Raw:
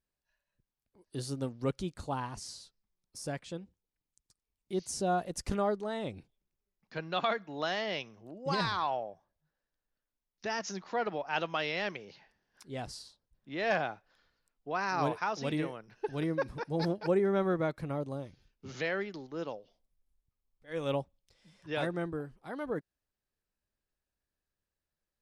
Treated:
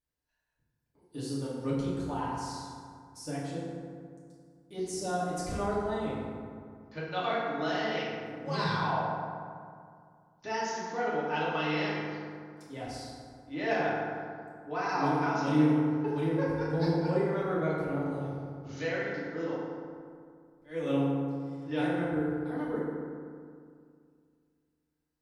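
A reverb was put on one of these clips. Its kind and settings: FDN reverb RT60 2.2 s, low-frequency decay 1.2×, high-frequency decay 0.45×, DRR -8.5 dB; gain -7.5 dB

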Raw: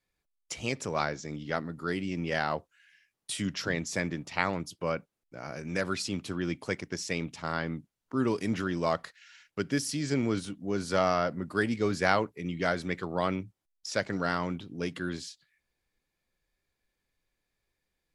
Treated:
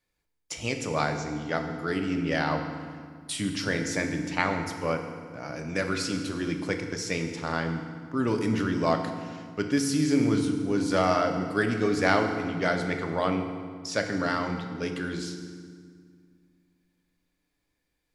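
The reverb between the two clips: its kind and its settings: FDN reverb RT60 1.9 s, low-frequency decay 1.45×, high-frequency decay 0.75×, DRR 4 dB; gain +1.5 dB

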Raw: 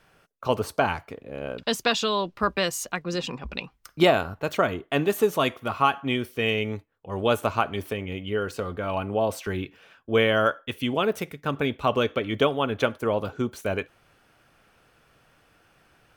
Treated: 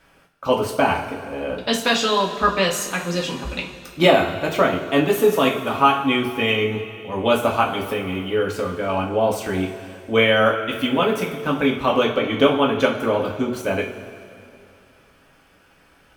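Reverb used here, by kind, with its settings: two-slope reverb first 0.33 s, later 2.6 s, from -15 dB, DRR -2.5 dB; gain +1.5 dB

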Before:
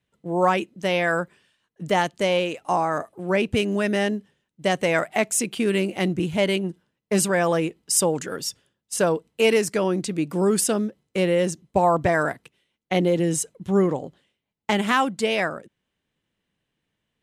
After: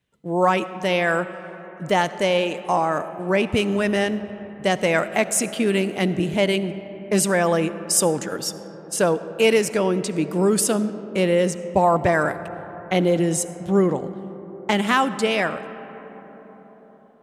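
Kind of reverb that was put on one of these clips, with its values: digital reverb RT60 5 s, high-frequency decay 0.3×, pre-delay 30 ms, DRR 13 dB; gain +1.5 dB

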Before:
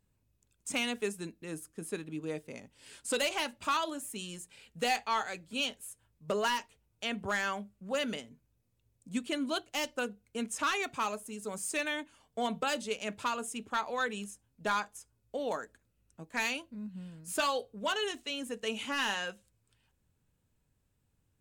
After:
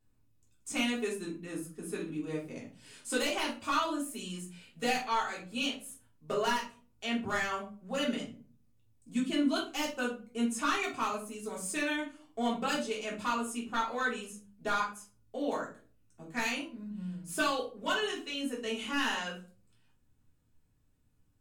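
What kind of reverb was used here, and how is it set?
shoebox room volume 240 m³, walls furnished, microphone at 3.4 m; gain -6 dB

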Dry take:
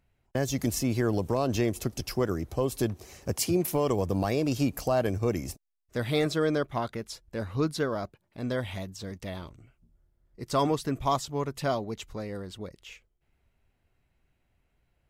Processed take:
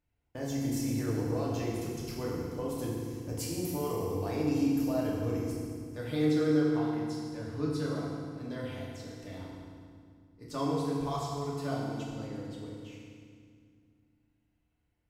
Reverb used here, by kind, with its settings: FDN reverb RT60 2.1 s, low-frequency decay 1.5×, high-frequency decay 0.85×, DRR -5.5 dB; gain -13.5 dB

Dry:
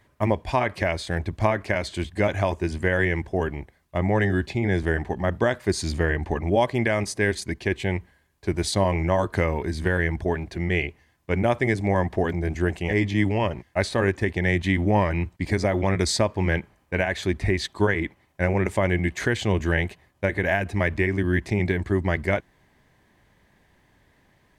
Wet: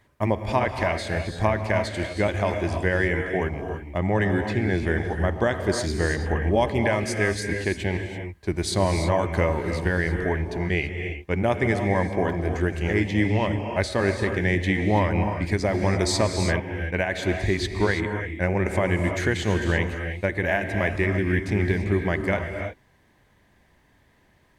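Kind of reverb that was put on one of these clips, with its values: non-linear reverb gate 0.36 s rising, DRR 5 dB; gain -1 dB

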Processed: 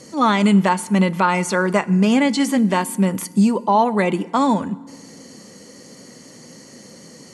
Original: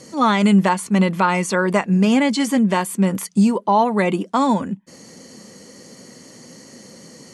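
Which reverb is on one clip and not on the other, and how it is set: FDN reverb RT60 1.4 s, low-frequency decay 1.55×, high-frequency decay 0.8×, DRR 18 dB

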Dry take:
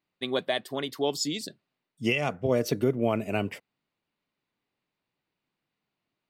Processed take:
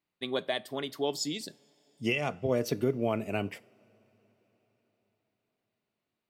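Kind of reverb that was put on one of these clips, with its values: two-slope reverb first 0.37 s, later 4.9 s, from -22 dB, DRR 17.5 dB; gain -3.5 dB

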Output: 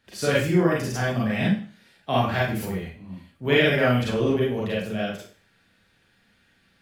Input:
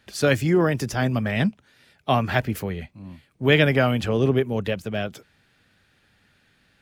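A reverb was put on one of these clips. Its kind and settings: Schroeder reverb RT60 0.41 s, combs from 33 ms, DRR -6 dB; gain -7.5 dB

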